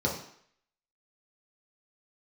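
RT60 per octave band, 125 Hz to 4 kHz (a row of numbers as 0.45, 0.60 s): 0.50, 0.55, 0.60, 0.65, 0.70, 0.65 s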